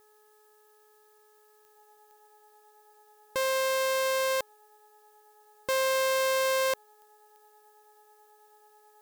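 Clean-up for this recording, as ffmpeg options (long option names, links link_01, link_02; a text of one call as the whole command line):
ffmpeg -i in.wav -af "adeclick=threshold=4,bandreject=frequency=424.6:width_type=h:width=4,bandreject=frequency=849.2:width_type=h:width=4,bandreject=frequency=1273.8:width_type=h:width=4,bandreject=frequency=1698.4:width_type=h:width=4,bandreject=frequency=840:width=30,agate=range=-21dB:threshold=-54dB" out.wav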